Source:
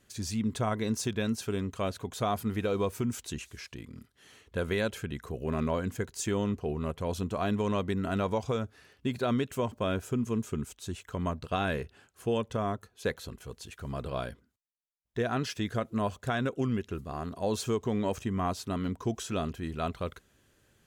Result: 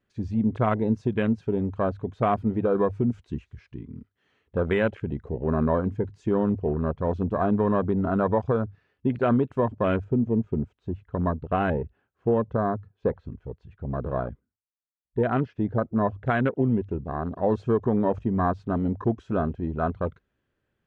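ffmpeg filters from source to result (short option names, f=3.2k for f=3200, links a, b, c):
-filter_complex "[0:a]asettb=1/sr,asplit=3[a][b][c];[a]atrim=end=10.044[d];[b]atrim=start=10.04:end=16.26,asetpts=PTS-STARTPTS,afade=t=in:d=0.004:c=qsin,afade=t=out:st=6.216:d=0.004:c=qsin,lowpass=f=1.8k:p=1[e];[c]atrim=start=16.256[f];[d][e]acrossfade=d=0.004:c1=hsin:c2=qsin[g];[g][f]acrossfade=d=0.004:c1=qsin:c2=hsin,lowpass=2.5k,bandreject=f=50:t=h:w=6,bandreject=f=100:t=h:w=6,afwtdn=0.0126,volume=7dB"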